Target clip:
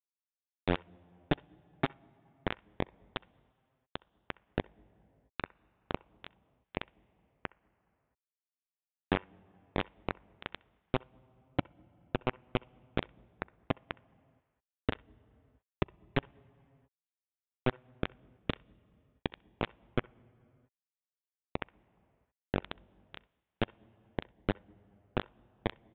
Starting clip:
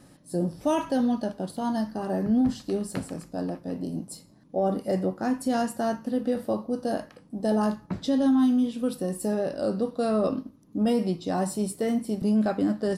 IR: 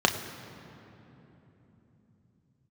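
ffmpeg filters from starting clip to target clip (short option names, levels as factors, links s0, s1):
-filter_complex "[0:a]acompressor=threshold=0.0398:ratio=12,acrusher=bits=3:mix=0:aa=0.000001,asplit=2[s0][s1];[1:a]atrim=start_sample=2205,afade=t=out:st=0.39:d=0.01,atrim=end_sample=17640[s2];[s1][s2]afir=irnorm=-1:irlink=0,volume=0.0282[s3];[s0][s3]amix=inputs=2:normalize=0,asetrate=22050,aresample=44100,aresample=8000,aresample=44100,volume=1.12"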